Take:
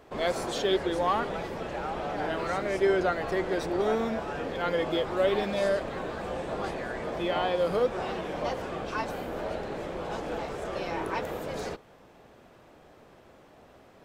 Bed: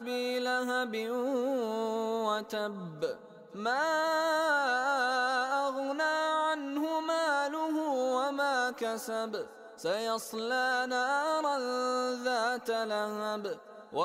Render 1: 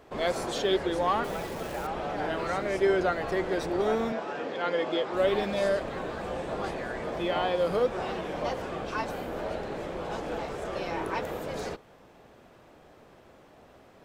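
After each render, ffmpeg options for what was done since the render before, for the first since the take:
-filter_complex "[0:a]asettb=1/sr,asplit=3[a][b][c];[a]atrim=end=1.244[d];[b]atrim=start=1.24:end=1.87,asetpts=PTS-STARTPTS,afade=t=in:d=0.004:c=qsin,afade=t=out:st=0.626:d=0.004:c=qsin,acrusher=bits=8:dc=4:mix=0:aa=0.000001[e];[c]atrim=start=1.866[f];[d][e]acrossfade=d=0.004:c1=hsin:c2=qsin[g];[g][f]acrossfade=d=0.004:c1=qsin:c2=hsin,asettb=1/sr,asplit=3[h][i][j];[h]atrim=end=4.124[k];[i]atrim=start=4.12:end=5.14,asetpts=PTS-STARTPTS,afade=t=in:d=0.004:c=qsin,afade=t=out:st=1.016:d=0.004:c=qsin,highpass=230,lowpass=6.9k[l];[j]atrim=start=5.136[m];[k][l]acrossfade=d=0.004:c1=hsin:c2=qsin[n];[n][m]acrossfade=d=0.004:c1=qsin:c2=hsin"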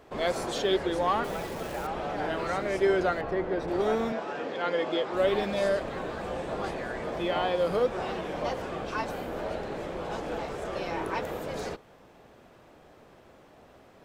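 -filter_complex "[0:a]asettb=1/sr,asplit=3[a][b][c];[a]atrim=end=3.214[d];[b]atrim=start=3.21:end=3.68,asetpts=PTS-STARTPTS,afade=t=in:d=0.004:c=qsin,afade=t=out:st=0.466:d=0.004:c=qsin,lowpass=f=1.4k:p=1[e];[c]atrim=start=3.676[f];[d][e]acrossfade=d=0.004:c1=hsin:c2=qsin[g];[g][f]acrossfade=d=0.004:c1=qsin:c2=hsin"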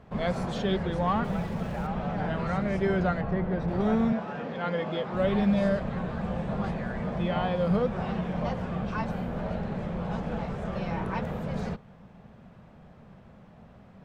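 -af "lowpass=f=2.2k:p=1,lowshelf=f=250:t=q:w=3:g=7.5"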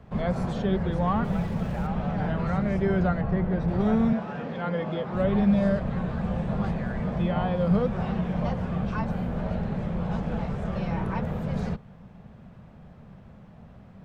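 -filter_complex "[0:a]acrossover=split=200|850|1800[a][b][c][d];[a]acontrast=33[e];[d]alimiter=level_in=15dB:limit=-24dB:level=0:latency=1:release=233,volume=-15dB[f];[e][b][c][f]amix=inputs=4:normalize=0"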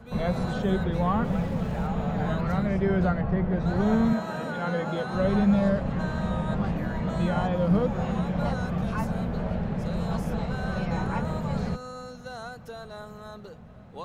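-filter_complex "[1:a]volume=-9dB[a];[0:a][a]amix=inputs=2:normalize=0"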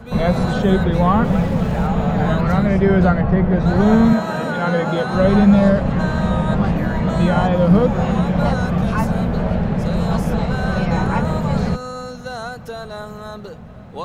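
-af "volume=10dB,alimiter=limit=-3dB:level=0:latency=1"

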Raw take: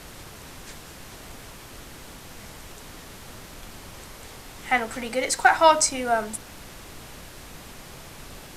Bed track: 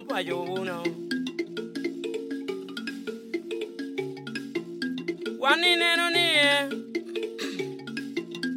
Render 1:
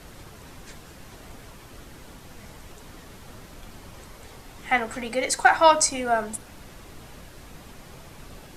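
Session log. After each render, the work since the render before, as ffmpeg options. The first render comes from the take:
-af "afftdn=nr=6:nf=-44"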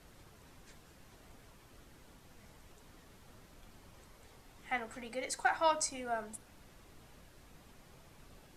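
-af "volume=-14dB"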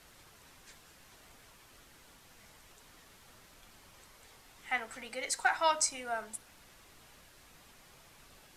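-af "tiltshelf=f=710:g=-5.5"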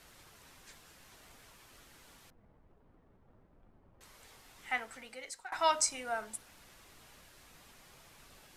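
-filter_complex "[0:a]asettb=1/sr,asplit=3[a][b][c];[a]atrim=end=2.304[d];[b]atrim=start=2.3:end=4.01,asetpts=PTS-STARTPTS,afade=t=in:d=0.004:c=qsin,afade=t=out:st=1.706:d=0.004:c=qsin,adynamicsmooth=sensitivity=8:basefreq=540[e];[c]atrim=start=4.006[f];[d][e]acrossfade=d=0.004:c1=hsin:c2=qsin[g];[g][f]acrossfade=d=0.004:c1=qsin:c2=hsin,asplit=2[h][i];[h]atrim=end=5.52,asetpts=PTS-STARTPTS,afade=t=out:st=4.63:d=0.89:silence=0.0707946[j];[i]atrim=start=5.52,asetpts=PTS-STARTPTS,afade=t=in:d=0.004:c=hsin:silence=0.0707946[k];[j][k]concat=n=2:v=0:a=1"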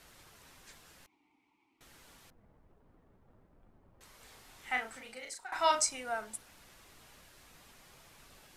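-filter_complex "[0:a]asettb=1/sr,asplit=3[a][b][c];[a]atrim=end=1.064[d];[b]atrim=start=1.06:end=1.81,asetpts=PTS-STARTPTS,afade=t=in:d=0.004:c=qsin,afade=t=out:st=0.746:d=0.004:c=qsin,asplit=3[e][f][g];[e]bandpass=f=300:t=q:w=8,volume=0dB[h];[f]bandpass=f=870:t=q:w=8,volume=-6dB[i];[g]bandpass=f=2.24k:t=q:w=8,volume=-9dB[j];[h][i][j]amix=inputs=3:normalize=0[k];[c]atrim=start=1.806[l];[d][k]acrossfade=d=0.004:c1=hsin:c2=qsin[m];[m][l]acrossfade=d=0.004:c1=qsin:c2=hsin,asettb=1/sr,asplit=3[n][o][p];[n]atrim=end=4.174[q];[o]atrim=start=4.17:end=5.84,asetpts=PTS-STARTPTS,afade=t=in:d=0.004:c=qsin,afade=t=out:st=1.666:d=0.004:c=qsin,asplit=2[r][s];[s]adelay=36,volume=-4.5dB[t];[r][t]amix=inputs=2:normalize=0,atrim=end_sample=73647[u];[p]atrim=start=5.836[v];[q][u]acrossfade=d=0.004:c1=hsin:c2=qsin[w];[w][v]acrossfade=d=0.004:c1=qsin:c2=hsin"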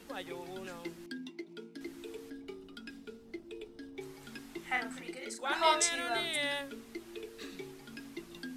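-filter_complex "[1:a]volume=-13.5dB[a];[0:a][a]amix=inputs=2:normalize=0"

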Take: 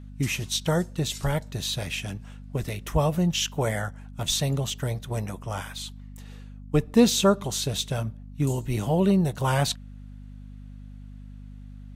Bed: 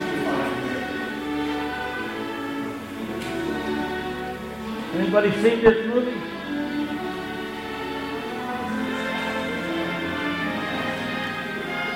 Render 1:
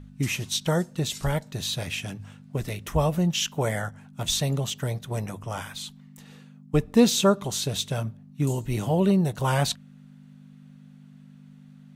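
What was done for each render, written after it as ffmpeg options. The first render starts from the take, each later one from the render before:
-af "bandreject=f=50:t=h:w=4,bandreject=f=100:t=h:w=4"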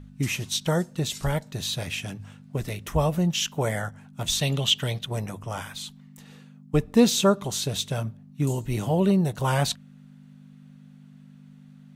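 -filter_complex "[0:a]asettb=1/sr,asplit=3[a][b][c];[a]atrim=end=4.414[d];[b]atrim=start=4.41:end=5.06,asetpts=PTS-STARTPTS,afade=t=in:d=0.004:c=qsin,afade=t=out:st=0.646:d=0.004:c=qsin,equalizer=f=3.1k:t=o:w=0.88:g=14.5[e];[c]atrim=start=5.056[f];[d][e]acrossfade=d=0.004:c1=hsin:c2=qsin[g];[g][f]acrossfade=d=0.004:c1=qsin:c2=hsin"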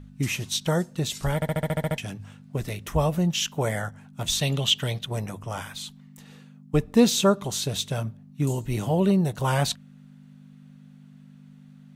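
-filter_complex "[0:a]asplit=10[a][b][c][d][e][f][g][h][i][j];[a]atrim=end=1.422[k];[b]atrim=start=1.348:end=1.422[l];[c]atrim=start=1.348:end=1.422[m];[d]atrim=start=1.348:end=1.422[n];[e]atrim=start=1.348:end=1.422[o];[f]atrim=start=1.348:end=1.422[p];[g]atrim=start=1.348:end=1.422[q];[h]atrim=start=1.348:end=1.422[r];[i]atrim=start=1.348:end=1.422[s];[j]atrim=start=1.978[t];[k][l]acrossfade=d=0.004:c1=hsin:c2=hsin[u];[u][m]acrossfade=d=0.004:c1=hsin:c2=hsin[v];[v][n]acrossfade=d=0.004:c1=hsin:c2=hsin[w];[w][o]acrossfade=d=0.004:c1=hsin:c2=hsin[x];[x][p]acrossfade=d=0.004:c1=hsin:c2=hsin[y];[y][q]acrossfade=d=0.004:c1=hsin:c2=hsin[z];[z][r]acrossfade=d=0.004:c1=hsin:c2=hsin[aa];[aa][s]acrossfade=d=0.004:c1=hsin:c2=hsin[ab];[ab][t]acrossfade=d=0.004:c1=hsin:c2=hsin"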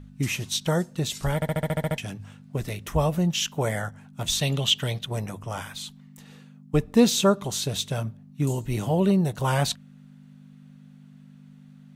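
-af anull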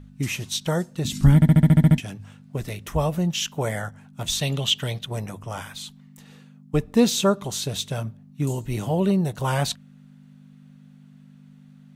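-filter_complex "[0:a]asettb=1/sr,asplit=3[a][b][c];[a]atrim=end=1.054[d];[b]atrim=start=1.05:end=2,asetpts=PTS-STARTPTS,afade=t=in:d=0.004:c=qsin,afade=t=out:st=0.946:d=0.004:c=qsin,lowshelf=f=360:t=q:w=3:g=11[e];[c]atrim=start=1.996[f];[d][e]acrossfade=d=0.004:c1=hsin:c2=qsin[g];[g][f]acrossfade=d=0.004:c1=qsin:c2=hsin"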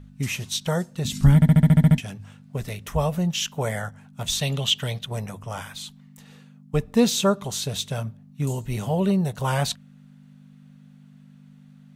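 -af "equalizer=f=320:w=7.9:g=-15"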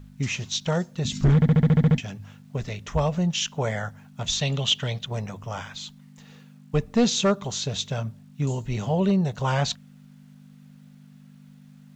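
-af "aresample=16000,asoftclip=type=hard:threshold=-14dB,aresample=44100,acrusher=bits=10:mix=0:aa=0.000001"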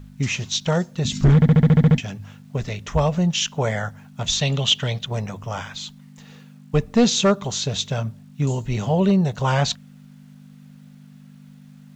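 -af "volume=4dB"

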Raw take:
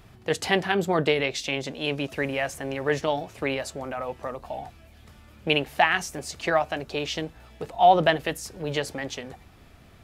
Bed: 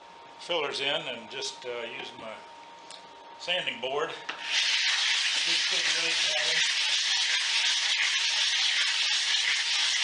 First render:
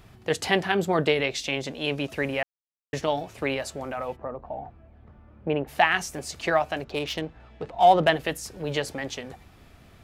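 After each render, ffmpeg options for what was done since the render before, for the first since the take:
-filter_complex "[0:a]asplit=3[a][b][c];[a]afade=t=out:st=4.15:d=0.02[d];[b]lowpass=1.1k,afade=t=in:st=4.15:d=0.02,afade=t=out:st=5.67:d=0.02[e];[c]afade=t=in:st=5.67:d=0.02[f];[d][e][f]amix=inputs=3:normalize=0,asettb=1/sr,asplit=3[g][h][i];[g]atrim=end=6.844[j];[h]atrim=start=6.84:end=8.09,asetpts=PTS-STARTPTS,afade=t=in:d=0.004:c=qsin,afade=t=out:st=1.246:d=0.004:c=qsin,adynamicsmooth=sensitivity=5:basefreq=3.3k[k];[i]atrim=start=8.086[l];[j][k]acrossfade=d=0.004:c1=hsin:c2=qsin[m];[m][l]acrossfade=d=0.004:c1=qsin:c2=hsin,asplit=3[n][o][p];[n]atrim=end=2.43,asetpts=PTS-STARTPTS,afade=t=out:st=2.426:d=0.004:c=hsin[q];[o]atrim=start=2.43:end=2.93,asetpts=PTS-STARTPTS,volume=0[r];[p]atrim=start=2.93,asetpts=PTS-STARTPTS,afade=t=in:d=0.004:c=hsin[s];[q][r][s]concat=n=3:v=0:a=1"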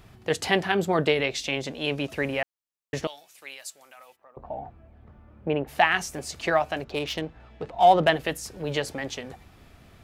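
-filter_complex "[0:a]asettb=1/sr,asplit=3[a][b][c];[a]atrim=end=3.074[d];[b]atrim=start=3.07:end=4.37,asetpts=PTS-STARTPTS,afade=t=in:d=0.004:c=qsin,afade=t=out:st=1.296:d=0.004:c=qsin,aderivative[e];[c]atrim=start=4.366[f];[d][e]acrossfade=d=0.004:c1=hsin:c2=qsin[g];[g][f]acrossfade=d=0.004:c1=qsin:c2=hsin"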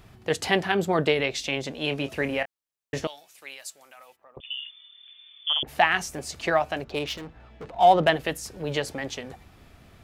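-filter_complex "[0:a]asettb=1/sr,asplit=3[a][b][c];[a]atrim=end=1.784[d];[b]atrim=start=1.78:end=3.07,asetpts=PTS-STARTPTS,afade=t=in:d=0.004:c=qsin,afade=t=out:st=1.286:d=0.004:c=qsin,asplit=2[e][f];[f]adelay=26,volume=-10.5dB[g];[e][g]amix=inputs=2:normalize=0,atrim=end_sample=56889[h];[c]atrim=start=3.066[i];[d][h]acrossfade=d=0.004:c1=hsin:c2=qsin[j];[j][i]acrossfade=d=0.004:c1=qsin:c2=hsin,asettb=1/sr,asplit=3[k][l][m];[k]atrim=end=4.404[n];[l]atrim=start=4.4:end=5.63,asetpts=PTS-STARTPTS,afade=t=in:d=0.004:c=qsin,afade=t=out:st=1.226:d=0.004:c=qsin,lowpass=f=3.1k:t=q:w=0.5098,lowpass=f=3.1k:t=q:w=0.6013,lowpass=f=3.1k:t=q:w=0.9,lowpass=f=3.1k:t=q:w=2.563,afreqshift=-3600[o];[m]atrim=start=5.626[p];[n][o]acrossfade=d=0.004:c1=hsin:c2=qsin[q];[q][p]acrossfade=d=0.004:c1=qsin:c2=hsin,asettb=1/sr,asplit=3[r][s][t];[r]atrim=end=7.144[u];[s]atrim=start=7.14:end=7.77,asetpts=PTS-STARTPTS,afade=t=in:d=0.004:c=qsin,afade=t=out:st=0.626:d=0.004:c=qsin,volume=35dB,asoftclip=hard,volume=-35dB[v];[t]atrim=start=7.766[w];[u][v]acrossfade=d=0.004:c1=hsin:c2=qsin[x];[x][w]acrossfade=d=0.004:c1=qsin:c2=hsin"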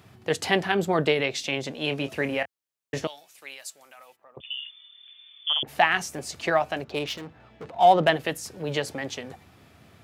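-af "highpass=f=85:w=0.5412,highpass=f=85:w=1.3066"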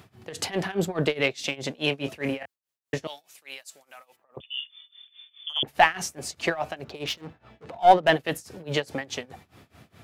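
-filter_complex "[0:a]asplit=2[a][b];[b]aeval=exprs='clip(val(0),-1,0.126)':c=same,volume=-5dB[c];[a][c]amix=inputs=2:normalize=0,tremolo=f=4.8:d=0.92"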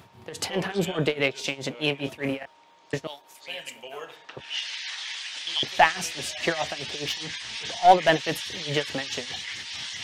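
-filter_complex "[1:a]volume=-9dB[a];[0:a][a]amix=inputs=2:normalize=0"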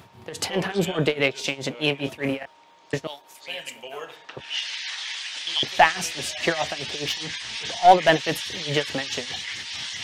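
-af "volume=2.5dB,alimiter=limit=-2dB:level=0:latency=1"

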